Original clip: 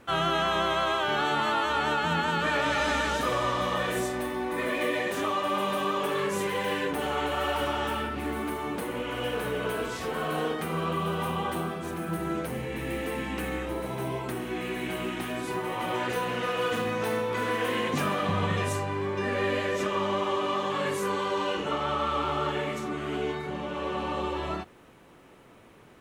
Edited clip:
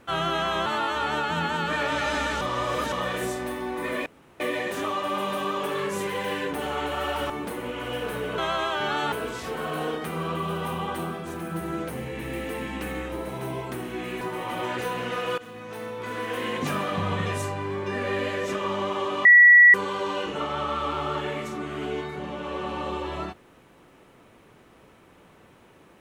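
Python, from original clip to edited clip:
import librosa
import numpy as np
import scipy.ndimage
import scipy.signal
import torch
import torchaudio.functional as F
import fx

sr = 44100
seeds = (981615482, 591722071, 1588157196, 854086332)

y = fx.edit(x, sr, fx.move(start_s=0.66, length_s=0.74, to_s=9.69),
    fx.reverse_span(start_s=3.15, length_s=0.51),
    fx.insert_room_tone(at_s=4.8, length_s=0.34),
    fx.cut(start_s=7.7, length_s=0.91),
    fx.cut(start_s=14.78, length_s=0.74),
    fx.fade_in_from(start_s=16.69, length_s=1.27, floor_db=-16.5),
    fx.bleep(start_s=20.56, length_s=0.49, hz=1940.0, db=-9.0), tone=tone)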